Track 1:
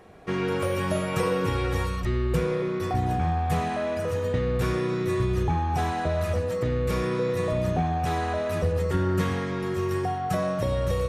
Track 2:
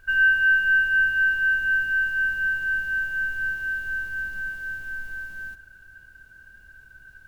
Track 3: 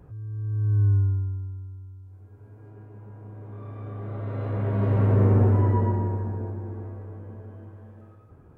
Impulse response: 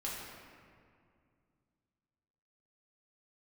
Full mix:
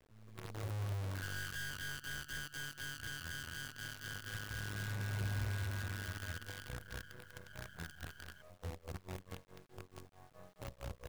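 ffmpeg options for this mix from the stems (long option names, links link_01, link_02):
-filter_complex "[0:a]aecho=1:1:1.9:0.9,tremolo=f=4.6:d=0.94,volume=-19.5dB[link_01];[1:a]highpass=280,acompressor=mode=upward:threshold=-30dB:ratio=2.5,aeval=exprs='val(0)*sin(2*PI*72*n/s)':channel_layout=same,adelay=1150,volume=0.5dB,asplit=2[link_02][link_03];[link_03]volume=-10.5dB[link_04];[2:a]volume=-19dB[link_05];[link_01][link_02]amix=inputs=2:normalize=0,aeval=exprs='(tanh(10*val(0)+0.35)-tanh(0.35))/10':channel_layout=same,acompressor=threshold=-31dB:ratio=16,volume=0dB[link_06];[3:a]atrim=start_sample=2205[link_07];[link_04][link_07]afir=irnorm=-1:irlink=0[link_08];[link_05][link_06][link_08]amix=inputs=3:normalize=0,highshelf=frequency=2000:gain=-10.5,acrossover=split=190|3000[link_09][link_10][link_11];[link_10]acompressor=threshold=-54dB:ratio=4[link_12];[link_09][link_12][link_11]amix=inputs=3:normalize=0,acrusher=bits=8:dc=4:mix=0:aa=0.000001"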